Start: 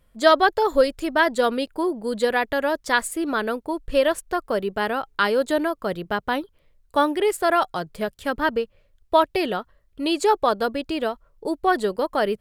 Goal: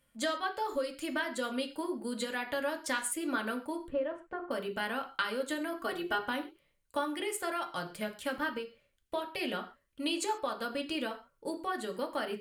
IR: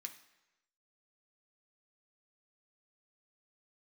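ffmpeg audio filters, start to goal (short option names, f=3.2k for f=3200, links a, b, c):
-filter_complex "[0:a]asettb=1/sr,asplit=3[a][b][c];[a]atrim=end=3.884[d];[b]atrim=start=3.88:end=4.51,asetpts=PTS-STARTPTS,afade=t=in:d=0.004:c=qsin,afade=t=out:st=0.626:d=0.004:c=qsin,lowpass=1.1k[e];[c]atrim=start=4.506[f];[d][e]acrossfade=d=0.004:c1=hsin:c2=qsin[g];[g][f]acrossfade=d=0.004:c1=qsin:c2=hsin,acompressor=threshold=-23dB:ratio=10,asettb=1/sr,asplit=3[h][i][j];[h]atrim=end=5.724[k];[i]atrim=start=5.72:end=6.19,asetpts=PTS-STARTPTS,afade=t=in:d=0.004:c=qsin,afade=t=out:st=0.466:d=0.004:c=qsin,aecho=1:1:2.7:0.96,atrim=end_sample=20727[l];[j]atrim=start=6.186[m];[k][l]acrossfade=d=0.004:c1=hsin:c2=qsin[n];[n][m]acrossfade=d=0.004:c1=qsin:c2=hsin[o];[1:a]atrim=start_sample=2205,afade=t=out:st=0.22:d=0.01,atrim=end_sample=10143,asetrate=52920,aresample=44100[p];[o][p]afir=irnorm=-1:irlink=0,volume=3dB"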